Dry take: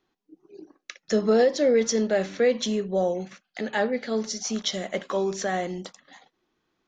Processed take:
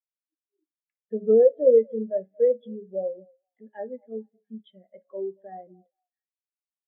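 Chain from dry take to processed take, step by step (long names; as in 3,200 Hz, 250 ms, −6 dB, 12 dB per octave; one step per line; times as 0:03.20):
hum removal 69.89 Hz, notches 36
downsampling to 8,000 Hz
echo through a band-pass that steps 230 ms, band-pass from 660 Hz, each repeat 0.7 octaves, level −11 dB
every bin expanded away from the loudest bin 2.5 to 1
level +2.5 dB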